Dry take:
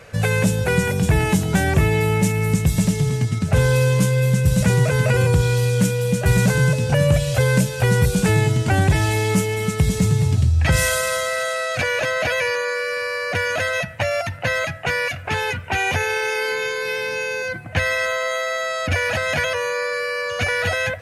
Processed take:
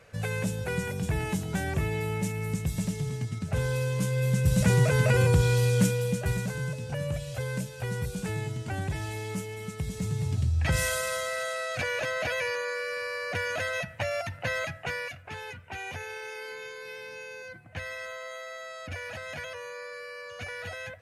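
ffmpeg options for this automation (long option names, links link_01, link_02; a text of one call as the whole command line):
ffmpeg -i in.wav -af "volume=1.5dB,afade=type=in:start_time=3.93:duration=0.81:silence=0.446684,afade=type=out:start_time=5.83:duration=0.6:silence=0.298538,afade=type=in:start_time=9.91:duration=0.64:silence=0.473151,afade=type=out:start_time=14.7:duration=0.55:silence=0.398107" out.wav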